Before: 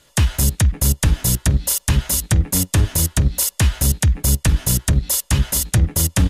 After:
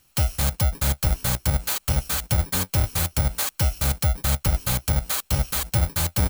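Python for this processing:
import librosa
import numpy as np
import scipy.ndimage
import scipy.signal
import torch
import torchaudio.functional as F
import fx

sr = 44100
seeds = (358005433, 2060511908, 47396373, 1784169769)

y = fx.bit_reversed(x, sr, seeds[0], block=64)
y = y * 10.0 ** (-6.0 / 20.0)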